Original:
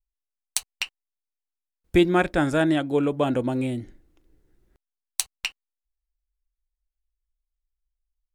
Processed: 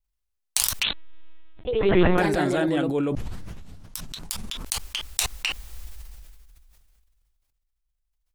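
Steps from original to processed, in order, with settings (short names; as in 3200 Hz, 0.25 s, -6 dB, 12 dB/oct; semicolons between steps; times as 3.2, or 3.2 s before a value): vocal rider 0.5 s; transient shaper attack -1 dB, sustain +4 dB; 3.15 tape start 2.20 s; echoes that change speed 95 ms, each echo +2 st, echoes 3; 0.83–2.18 LPC vocoder at 8 kHz pitch kept; sustainer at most 24 dB/s; gain -2 dB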